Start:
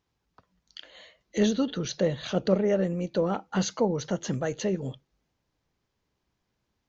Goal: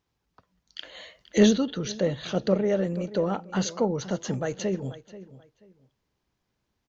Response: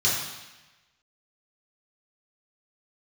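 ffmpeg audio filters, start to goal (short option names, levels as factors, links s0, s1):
-filter_complex "[0:a]asplit=2[s0][s1];[s1]adelay=484,lowpass=f=3900:p=1,volume=0.158,asplit=2[s2][s3];[s3]adelay=484,lowpass=f=3900:p=1,volume=0.24[s4];[s2][s4]amix=inputs=2:normalize=0[s5];[s0][s5]amix=inputs=2:normalize=0,asettb=1/sr,asplit=3[s6][s7][s8];[s6]atrim=end=0.784[s9];[s7]atrim=start=0.78:end=1.58,asetpts=PTS-STARTPTS,afade=t=in:d=0.004:c=qsin,afade=t=out:st=0.796:d=0.004:c=qsin,acontrast=52[s10];[s8]atrim=start=1.576[s11];[s9][s10]acrossfade=d=0.004:c1=hsin:c2=qsin[s12];[s12][s11]acrossfade=d=0.004:c1=qsin:c2=hsin"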